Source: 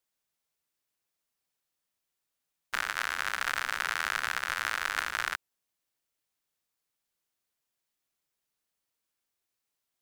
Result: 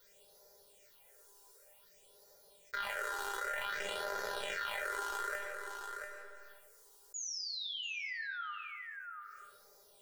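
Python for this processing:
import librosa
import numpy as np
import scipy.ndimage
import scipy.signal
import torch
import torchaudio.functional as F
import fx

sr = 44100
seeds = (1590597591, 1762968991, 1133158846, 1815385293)

p1 = fx.band_shelf(x, sr, hz=560.0, db=12.0, octaves=1.1)
p2 = fx.hum_notches(p1, sr, base_hz=50, count=8)
p3 = p2 + 0.54 * np.pad(p2, (int(2.1 * sr / 1000.0), 0))[:len(p2)]
p4 = fx.leveller(p3, sr, passes=2)
p5 = fx.phaser_stages(p4, sr, stages=6, low_hz=150.0, high_hz=2800.0, hz=0.54, feedback_pct=25)
p6 = fx.spec_paint(p5, sr, seeds[0], shape='fall', start_s=7.14, length_s=1.37, low_hz=1200.0, high_hz=7000.0, level_db=-36.0)
p7 = fx.comb_fb(p6, sr, f0_hz=200.0, decay_s=0.25, harmonics='all', damping=0.0, mix_pct=90)
p8 = p7 + fx.echo_single(p7, sr, ms=687, db=-19.0, dry=0)
p9 = fx.rev_freeverb(p8, sr, rt60_s=0.88, hf_ratio=0.85, predelay_ms=65, drr_db=14.0)
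p10 = fx.env_flatten(p9, sr, amount_pct=70)
y = p10 * librosa.db_to_amplitude(-4.0)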